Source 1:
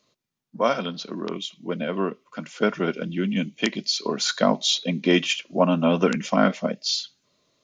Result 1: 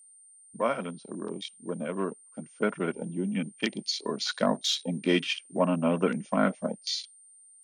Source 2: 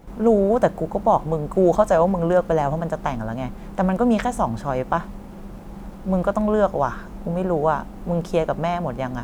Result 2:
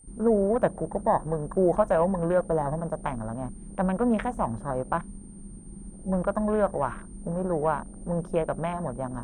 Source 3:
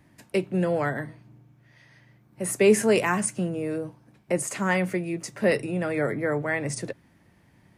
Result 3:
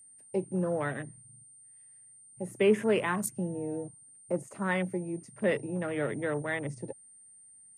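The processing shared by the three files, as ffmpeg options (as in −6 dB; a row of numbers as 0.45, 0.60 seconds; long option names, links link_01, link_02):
-af "afwtdn=0.0224,aeval=exprs='val(0)+0.00447*sin(2*PI*8900*n/s)':channel_layout=same,bandreject=frequency=710:width=20,volume=-5.5dB"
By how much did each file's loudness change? −6.0, −6.0, −6.0 LU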